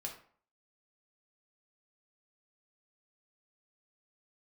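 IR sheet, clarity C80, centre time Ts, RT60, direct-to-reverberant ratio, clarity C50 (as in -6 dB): 12.0 dB, 21 ms, 0.50 s, 0.0 dB, 8.0 dB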